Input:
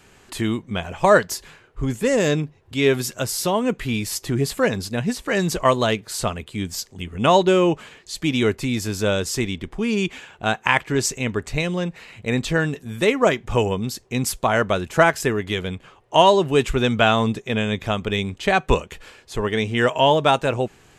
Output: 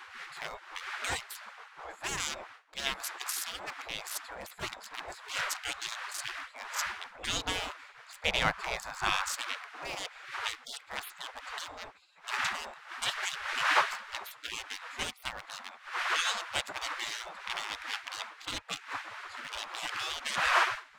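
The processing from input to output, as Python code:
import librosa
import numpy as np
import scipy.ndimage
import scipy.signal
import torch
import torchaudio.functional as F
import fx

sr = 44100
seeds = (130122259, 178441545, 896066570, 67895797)

y = fx.wiener(x, sr, points=15)
y = fx.dmg_wind(y, sr, seeds[0], corner_hz=330.0, level_db=-17.0)
y = fx.peak_eq(y, sr, hz=480.0, db=11.5, octaves=2.4, at=(8.25, 9.35))
y = fx.spec_gate(y, sr, threshold_db=-25, keep='weak')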